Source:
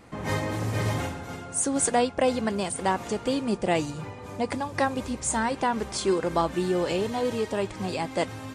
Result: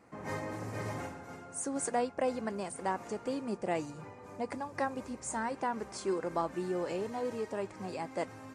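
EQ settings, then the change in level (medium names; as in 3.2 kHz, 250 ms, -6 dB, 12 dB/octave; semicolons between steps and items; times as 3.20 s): high-pass 200 Hz 6 dB/octave; peaking EQ 3.4 kHz -10.5 dB 0.73 oct; treble shelf 9.9 kHz -9.5 dB; -7.5 dB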